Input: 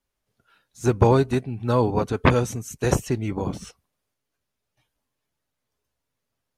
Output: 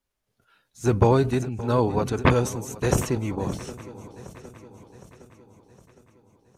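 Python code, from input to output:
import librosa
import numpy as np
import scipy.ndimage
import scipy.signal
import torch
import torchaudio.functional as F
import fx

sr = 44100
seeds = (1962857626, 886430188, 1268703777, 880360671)

y = fx.echo_swing(x, sr, ms=762, ratio=3, feedback_pct=51, wet_db=-17.0)
y = fx.sustainer(y, sr, db_per_s=120.0)
y = y * 10.0 ** (-1.5 / 20.0)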